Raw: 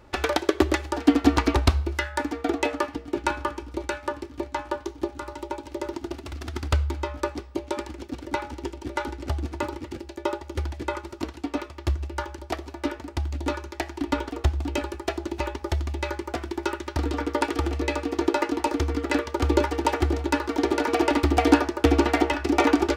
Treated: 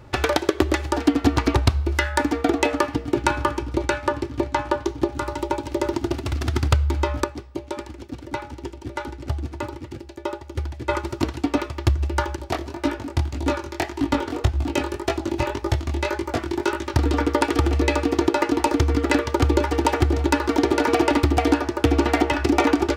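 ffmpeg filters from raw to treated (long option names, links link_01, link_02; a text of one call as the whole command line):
ffmpeg -i in.wav -filter_complex "[0:a]asettb=1/sr,asplit=3[link_01][link_02][link_03];[link_01]atrim=end=3.594[link_04];[link_02]atrim=start=3.59:end=5.12,asetpts=PTS-STARTPTS,afade=type=in:duration=0.004:curve=qsin,afade=type=out:start_time=1.526:duration=0.004:curve=qsin,highshelf=frequency=9100:gain=-6[link_05];[link_03]atrim=start=5.116[link_06];[link_04][link_05]acrossfade=duration=0.004:curve1=hsin:curve2=qsin[link_07];[link_07][link_06]acrossfade=duration=0.004:curve1=qsin:curve2=hsin,asettb=1/sr,asplit=3[link_08][link_09][link_10];[link_08]atrim=end=12.364[link_11];[link_09]atrim=start=12.36:end=16.94,asetpts=PTS-STARTPTS,afade=type=in:duration=0.004:curve=qsin,afade=type=out:start_time=4.576:duration=0.004:curve=qsin,flanger=delay=18:depth=5.6:speed=1.8[link_12];[link_10]atrim=start=16.936[link_13];[link_11][link_12]acrossfade=duration=0.004:curve1=hsin:curve2=qsin[link_14];[link_14][link_13]acrossfade=duration=0.004:curve1=qsin:curve2=hsin,asplit=3[link_15][link_16][link_17];[link_15]atrim=end=7.242[link_18];[link_16]atrim=start=7.238:end=10.892,asetpts=PTS-STARTPTS,volume=-9.5dB[link_19];[link_17]atrim=start=10.888[link_20];[link_18][link_19]acrossfade=duration=0.004:curve1=hsin:curve2=hsin[link_21];[link_21][link_20]acrossfade=duration=0.004:curve1=hsin:curve2=hsin,dynaudnorm=framelen=190:gausssize=3:maxgain=4dB,equalizer=frequency=120:width_type=o:width=0.81:gain=10.5,acompressor=threshold=-20dB:ratio=3,volume=4dB" out.wav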